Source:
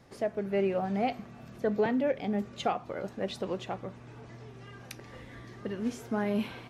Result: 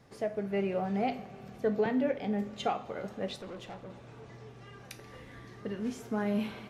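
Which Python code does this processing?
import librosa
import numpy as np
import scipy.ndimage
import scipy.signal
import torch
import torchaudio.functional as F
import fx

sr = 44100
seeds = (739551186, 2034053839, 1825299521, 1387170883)

y = fx.rev_double_slope(x, sr, seeds[0], early_s=0.36, late_s=3.4, knee_db=-17, drr_db=7.5)
y = fx.tube_stage(y, sr, drive_db=37.0, bias=0.5, at=(3.36, 3.9))
y = F.gain(torch.from_numpy(y), -2.5).numpy()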